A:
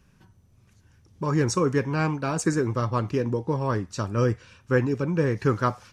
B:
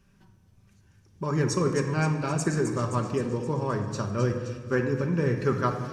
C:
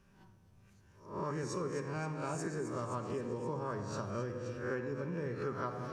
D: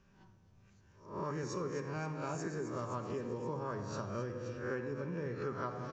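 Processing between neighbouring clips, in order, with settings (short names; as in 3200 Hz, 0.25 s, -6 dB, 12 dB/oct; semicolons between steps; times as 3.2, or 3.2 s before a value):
thin delay 0.262 s, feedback 60%, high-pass 3800 Hz, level -7 dB; shoebox room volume 2200 m³, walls mixed, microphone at 1.2 m; gain -3.5 dB
spectral swells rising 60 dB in 0.44 s; compressor 5:1, threshold -32 dBFS, peak gain reduction 12.5 dB; bell 730 Hz +5.5 dB 2.6 oct; gain -6.5 dB
downsampling 16000 Hz; gain -1 dB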